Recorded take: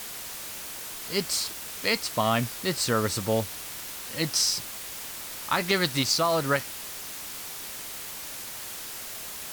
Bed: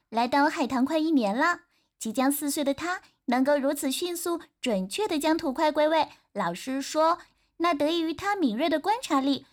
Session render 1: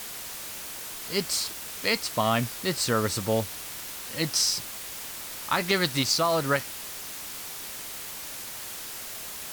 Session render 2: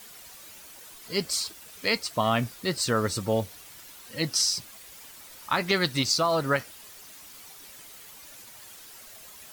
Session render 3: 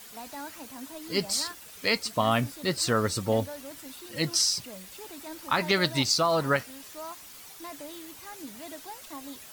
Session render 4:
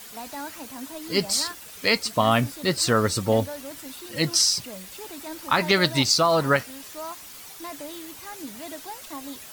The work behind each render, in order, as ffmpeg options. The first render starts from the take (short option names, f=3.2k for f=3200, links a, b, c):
-af anull
-af "afftdn=nr=11:nf=-38"
-filter_complex "[1:a]volume=-18dB[a];[0:a][a]amix=inputs=2:normalize=0"
-af "volume=4.5dB"